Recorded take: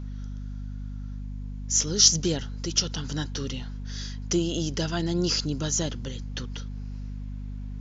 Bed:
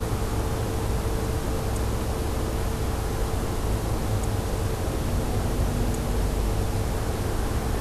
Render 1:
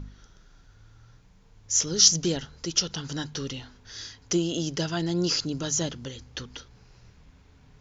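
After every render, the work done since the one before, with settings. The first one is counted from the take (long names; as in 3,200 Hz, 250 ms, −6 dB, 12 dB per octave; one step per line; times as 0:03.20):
hum removal 50 Hz, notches 5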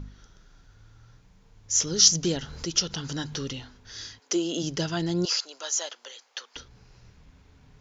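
0:01.81–0:03.53: upward compression, threshold −29 dBFS
0:04.18–0:04.62: high-pass filter 390 Hz → 160 Hz 24 dB per octave
0:05.25–0:06.56: high-pass filter 600 Hz 24 dB per octave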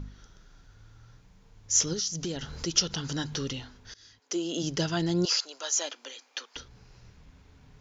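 0:01.93–0:02.51: downward compressor 4 to 1, threshold −30 dBFS
0:03.94–0:04.74: fade in, from −23.5 dB
0:05.76–0:06.46: hollow resonant body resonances 270/2,400 Hz, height 13 dB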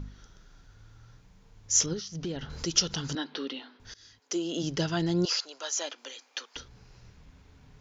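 0:01.86–0:02.50: high-frequency loss of the air 200 metres
0:03.15–0:03.80: elliptic band-pass filter 260–4,000 Hz
0:04.38–0:05.98: high-frequency loss of the air 59 metres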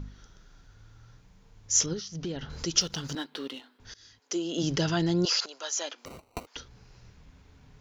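0:02.81–0:03.79: mu-law and A-law mismatch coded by A
0:04.58–0:05.46: envelope flattener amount 50%
0:06.05–0:06.47: sample-rate reduction 1,700 Hz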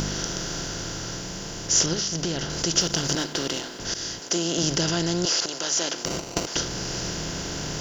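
compressor on every frequency bin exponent 0.4
speech leveller within 4 dB 2 s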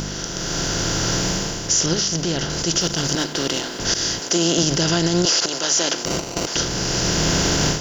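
automatic gain control gain up to 14 dB
brickwall limiter −8 dBFS, peak gain reduction 7 dB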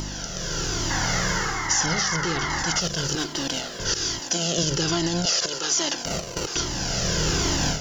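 0:00.90–0:02.80: sound drawn into the spectrogram noise 730–2,200 Hz −25 dBFS
flanger whose copies keep moving one way falling 1.2 Hz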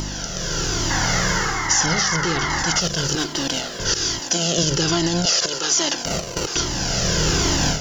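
level +4 dB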